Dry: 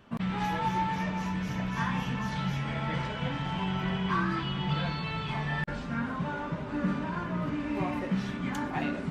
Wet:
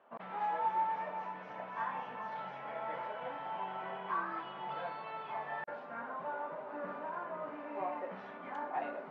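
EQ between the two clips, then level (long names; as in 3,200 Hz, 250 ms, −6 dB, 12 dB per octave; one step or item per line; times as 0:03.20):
four-pole ladder band-pass 800 Hz, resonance 35%
+7.5 dB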